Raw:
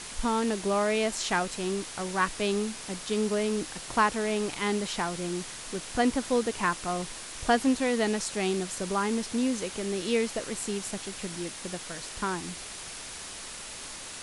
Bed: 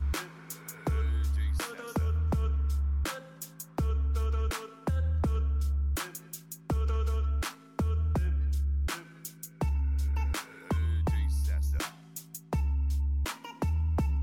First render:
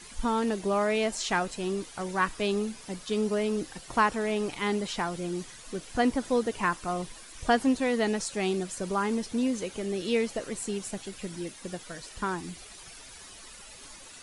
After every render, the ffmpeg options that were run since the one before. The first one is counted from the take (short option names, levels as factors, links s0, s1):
-af "afftdn=nr=11:nf=-41"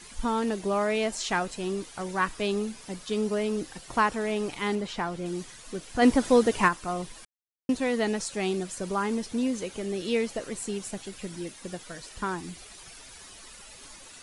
-filter_complex "[0:a]asettb=1/sr,asplit=3[s0][s1][s2];[s0]atrim=end=4.754[s3];[s1]atrim=start=4.75:end=5.26,asetpts=PTS-STARTPTS,afade=t=in:d=0.004:c=qsin,afade=t=out:st=0.506:d=0.004:c=qsin,aemphasis=mode=reproduction:type=cd[s4];[s2]atrim=start=5.256[s5];[s3][s4]acrossfade=d=0.004:c1=hsin:c2=qsin[s6];[s6][s5]acrossfade=d=0.004:c1=qsin:c2=hsin,asplit=3[s7][s8][s9];[s7]afade=t=out:st=6.01:d=0.02[s10];[s8]acontrast=63,afade=t=in:st=6.01:d=0.02,afade=t=out:st=6.67:d=0.02[s11];[s9]afade=t=in:st=6.67:d=0.02[s12];[s10][s11][s12]amix=inputs=3:normalize=0,asplit=3[s13][s14][s15];[s13]atrim=end=7.25,asetpts=PTS-STARTPTS,afade=t=out:st=7.246:d=0.004:c=hsin[s16];[s14]atrim=start=7.25:end=7.69,asetpts=PTS-STARTPTS,volume=0[s17];[s15]atrim=start=7.69,asetpts=PTS-STARTPTS,afade=t=in:d=0.004:c=hsin[s18];[s16][s17][s18]concat=n=3:v=0:a=1"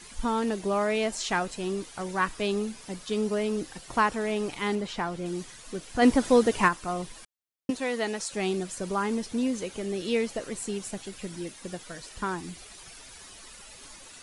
-filter_complex "[0:a]asettb=1/sr,asplit=3[s0][s1][s2];[s0]atrim=end=7.704[s3];[s1]atrim=start=7.7:end=8.31,asetpts=PTS-STARTPTS,afade=t=in:d=0.004:c=qsin,afade=t=out:st=0.606:d=0.004:c=qsin,lowshelf=f=240:g=-11.5[s4];[s2]atrim=start=8.306[s5];[s3][s4]acrossfade=d=0.004:c1=hsin:c2=qsin[s6];[s6][s5]acrossfade=d=0.004:c1=qsin:c2=hsin"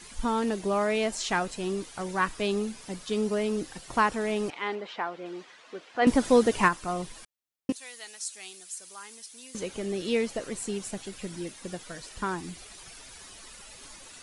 -filter_complex "[0:a]asettb=1/sr,asplit=3[s0][s1][s2];[s0]atrim=end=4.504[s3];[s1]atrim=start=4.5:end=6.07,asetpts=PTS-STARTPTS,afade=t=in:d=0.004:c=qsin,afade=t=out:st=1.566:d=0.004:c=qsin,highpass=430,lowpass=3100[s4];[s2]atrim=start=6.066[s5];[s3][s4]acrossfade=d=0.004:c1=hsin:c2=qsin[s6];[s6][s5]acrossfade=d=0.004:c1=qsin:c2=hsin,asettb=1/sr,asplit=3[s7][s8][s9];[s7]atrim=end=7.724[s10];[s8]atrim=start=7.72:end=9.55,asetpts=PTS-STARTPTS,afade=t=in:d=0.004:c=qsin,afade=t=out:st=1.826:d=0.004:c=qsin,aderivative[s11];[s9]atrim=start=9.546[s12];[s10][s11]acrossfade=d=0.004:c1=hsin:c2=qsin[s13];[s13][s12]acrossfade=d=0.004:c1=qsin:c2=hsin"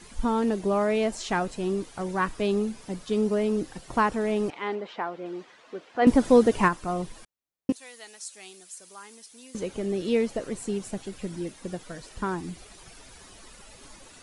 -af "tiltshelf=f=1100:g=4"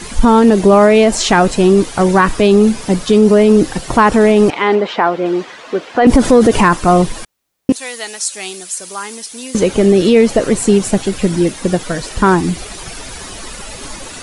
-af "acontrast=63,alimiter=level_in=4.73:limit=0.891:release=50:level=0:latency=1"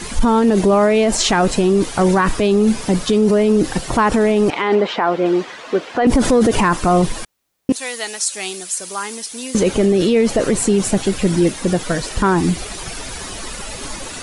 -af "alimiter=limit=0.473:level=0:latency=1:release=28"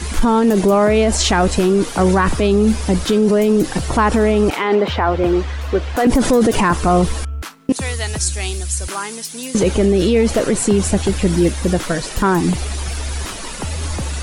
-filter_complex "[1:a]volume=1.58[s0];[0:a][s0]amix=inputs=2:normalize=0"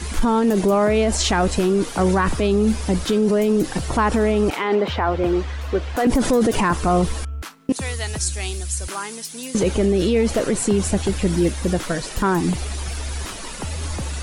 -af "volume=0.631"